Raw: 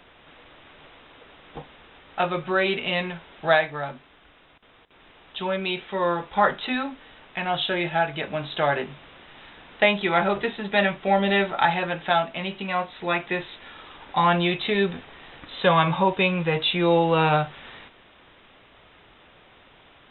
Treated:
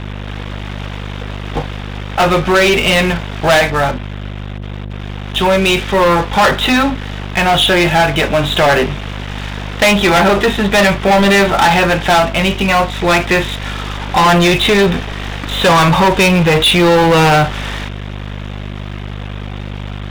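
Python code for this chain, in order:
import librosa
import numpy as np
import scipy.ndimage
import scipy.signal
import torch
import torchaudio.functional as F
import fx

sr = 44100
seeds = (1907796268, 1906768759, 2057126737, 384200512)

y = fx.add_hum(x, sr, base_hz=50, snr_db=15)
y = fx.leveller(y, sr, passes=5)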